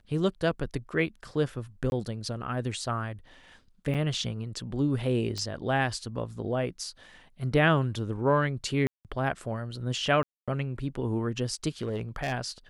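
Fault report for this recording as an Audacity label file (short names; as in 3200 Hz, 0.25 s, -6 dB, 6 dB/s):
1.900000	1.920000	gap 21 ms
3.940000	3.950000	gap 6.7 ms
5.380000	5.380000	pop -21 dBFS
8.870000	9.050000	gap 0.178 s
10.230000	10.480000	gap 0.246 s
11.810000	12.330000	clipped -26 dBFS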